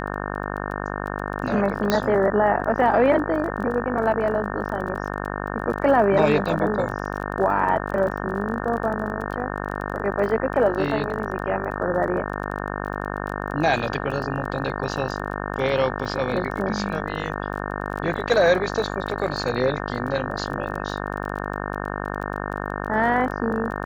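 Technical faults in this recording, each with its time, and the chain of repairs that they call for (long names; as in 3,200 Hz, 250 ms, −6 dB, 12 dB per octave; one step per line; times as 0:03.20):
mains buzz 50 Hz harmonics 36 −29 dBFS
surface crackle 22 per second −31 dBFS
0:01.90: click −6 dBFS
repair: click removal
hum removal 50 Hz, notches 36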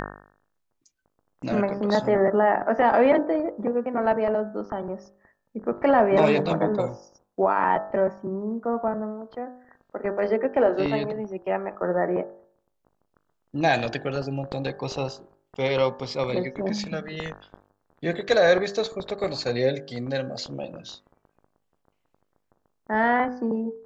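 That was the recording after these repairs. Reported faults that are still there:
none of them is left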